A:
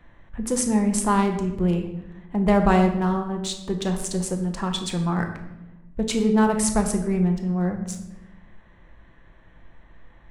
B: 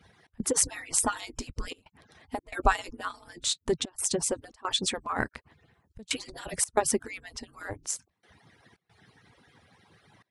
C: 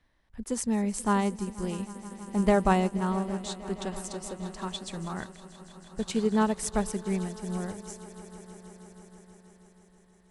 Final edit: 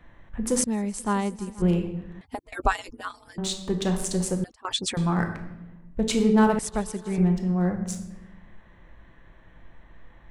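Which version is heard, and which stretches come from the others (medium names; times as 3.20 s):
A
0.64–1.62 s: from C
2.21–3.38 s: from B
4.44–4.97 s: from B
6.59–7.18 s: from C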